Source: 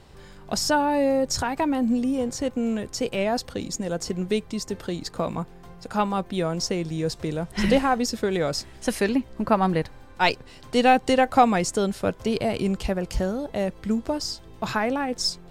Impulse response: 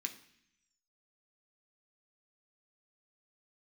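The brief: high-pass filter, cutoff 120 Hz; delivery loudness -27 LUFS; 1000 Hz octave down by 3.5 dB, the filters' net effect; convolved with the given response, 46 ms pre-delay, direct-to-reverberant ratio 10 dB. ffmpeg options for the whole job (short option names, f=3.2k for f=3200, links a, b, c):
-filter_complex "[0:a]highpass=120,equalizer=f=1k:t=o:g=-5,asplit=2[a][b];[1:a]atrim=start_sample=2205,adelay=46[c];[b][c]afir=irnorm=-1:irlink=0,volume=-8.5dB[d];[a][d]amix=inputs=2:normalize=0,volume=-1dB"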